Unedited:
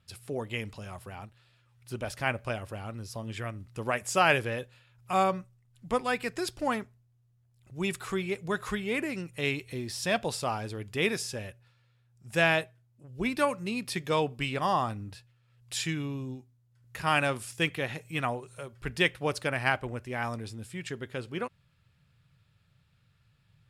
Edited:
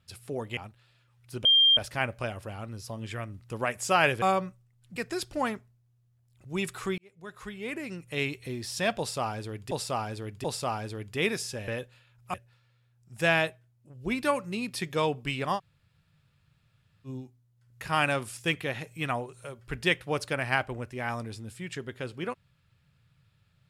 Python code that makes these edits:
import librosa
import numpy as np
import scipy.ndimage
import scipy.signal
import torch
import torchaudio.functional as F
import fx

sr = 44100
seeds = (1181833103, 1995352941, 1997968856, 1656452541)

y = fx.edit(x, sr, fx.cut(start_s=0.57, length_s=0.58),
    fx.insert_tone(at_s=2.03, length_s=0.32, hz=3190.0, db=-16.5),
    fx.move(start_s=4.48, length_s=0.66, to_s=11.48),
    fx.cut(start_s=5.88, length_s=0.34),
    fx.fade_in_span(start_s=8.24, length_s=1.28),
    fx.repeat(start_s=10.24, length_s=0.73, count=3),
    fx.room_tone_fill(start_s=14.71, length_s=1.5, crossfade_s=0.06), tone=tone)